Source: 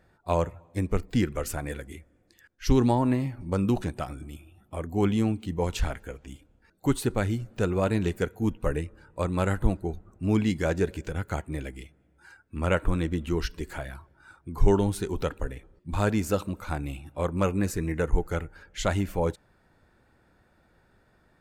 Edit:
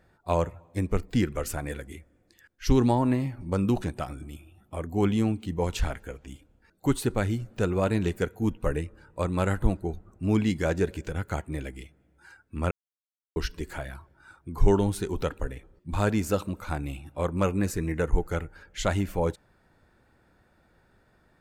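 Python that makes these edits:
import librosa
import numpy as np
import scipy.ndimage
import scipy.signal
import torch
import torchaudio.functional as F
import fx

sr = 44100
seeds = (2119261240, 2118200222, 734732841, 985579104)

y = fx.edit(x, sr, fx.silence(start_s=12.71, length_s=0.65), tone=tone)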